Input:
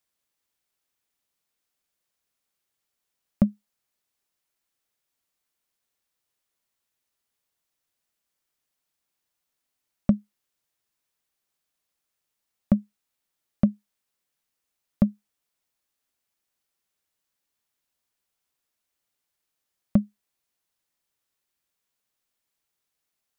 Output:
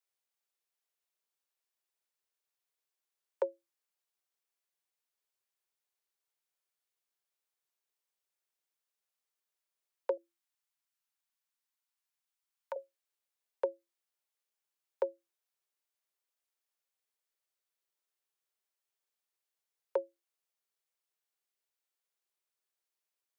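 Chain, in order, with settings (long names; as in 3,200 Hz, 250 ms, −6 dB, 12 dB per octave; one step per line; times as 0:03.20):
0:10.17–0:12.76: high-pass filter 440 Hz 12 dB per octave
downward compressor 2 to 1, threshold −22 dBFS, peak gain reduction 5 dB
frequency shifter +340 Hz
level −8.5 dB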